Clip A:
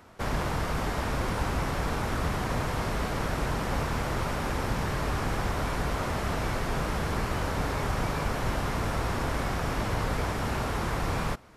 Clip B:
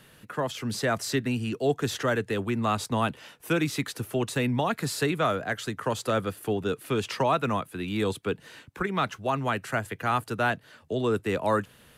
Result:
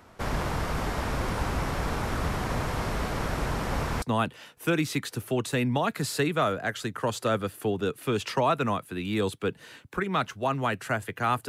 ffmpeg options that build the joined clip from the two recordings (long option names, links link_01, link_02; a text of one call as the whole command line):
ffmpeg -i cue0.wav -i cue1.wav -filter_complex "[0:a]apad=whole_dur=11.48,atrim=end=11.48,atrim=end=4.022[link_01];[1:a]atrim=start=2.848:end=10.31[link_02];[link_01][link_02]acrossfade=duration=0.004:curve1=hsin:curve2=hsin" out.wav